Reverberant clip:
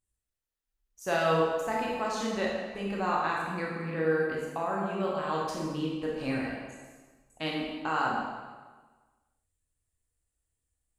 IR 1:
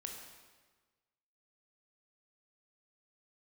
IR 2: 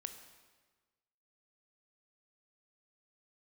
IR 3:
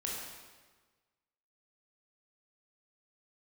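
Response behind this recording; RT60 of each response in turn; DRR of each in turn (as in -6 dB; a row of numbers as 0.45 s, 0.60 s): 3; 1.4 s, 1.4 s, 1.4 s; 1.0 dB, 7.5 dB, -4.0 dB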